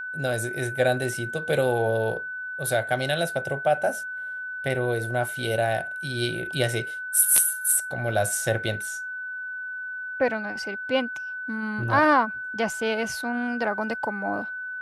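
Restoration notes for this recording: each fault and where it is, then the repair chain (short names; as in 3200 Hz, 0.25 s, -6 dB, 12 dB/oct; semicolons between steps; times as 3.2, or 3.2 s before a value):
tone 1500 Hz -31 dBFS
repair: notch 1500 Hz, Q 30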